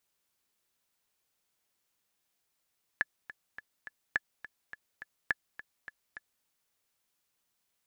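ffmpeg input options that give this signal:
-f lavfi -i "aevalsrc='pow(10,(-14-16*gte(mod(t,4*60/209),60/209))/20)*sin(2*PI*1720*mod(t,60/209))*exp(-6.91*mod(t,60/209)/0.03)':d=3.44:s=44100"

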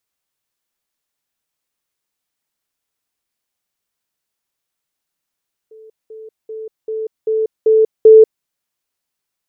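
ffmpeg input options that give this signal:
-f lavfi -i "aevalsrc='pow(10,(-37.5+6*floor(t/0.39))/20)*sin(2*PI*439*t)*clip(min(mod(t,0.39),0.19-mod(t,0.39))/0.005,0,1)':d=2.73:s=44100"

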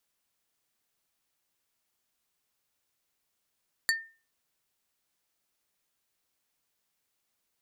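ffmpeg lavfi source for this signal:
-f lavfi -i "aevalsrc='0.0891*pow(10,-3*t/0.35)*sin(2*PI*1810*t)+0.0668*pow(10,-3*t/0.117)*sin(2*PI*4525*t)+0.0501*pow(10,-3*t/0.066)*sin(2*PI*7240*t)+0.0376*pow(10,-3*t/0.051)*sin(2*PI*9050*t)+0.0282*pow(10,-3*t/0.037)*sin(2*PI*11765*t)':d=0.45:s=44100"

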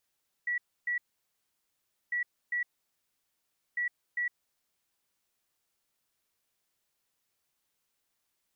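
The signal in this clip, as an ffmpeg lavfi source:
-f lavfi -i "aevalsrc='0.0398*sin(2*PI*1940*t)*clip(min(mod(mod(t,1.65),0.4),0.11-mod(mod(t,1.65),0.4))/0.005,0,1)*lt(mod(t,1.65),0.8)':d=4.95:s=44100"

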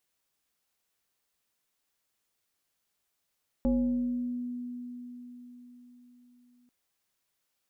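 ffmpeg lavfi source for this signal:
-f lavfi -i "aevalsrc='0.0794*pow(10,-3*t/4.6)*sin(2*PI*245*t+0.85*pow(10,-3*t/1.41)*sin(2*PI*1.2*245*t))':d=3.04:s=44100"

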